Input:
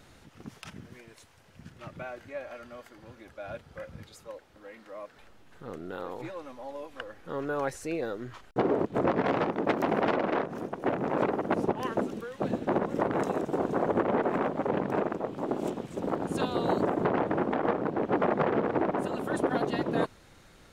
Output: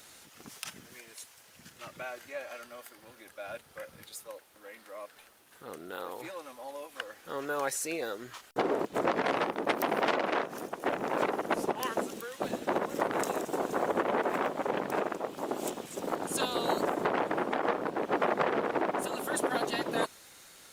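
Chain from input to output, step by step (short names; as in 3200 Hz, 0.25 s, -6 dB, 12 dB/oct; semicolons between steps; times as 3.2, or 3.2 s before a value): RIAA curve recording; Opus 48 kbps 48000 Hz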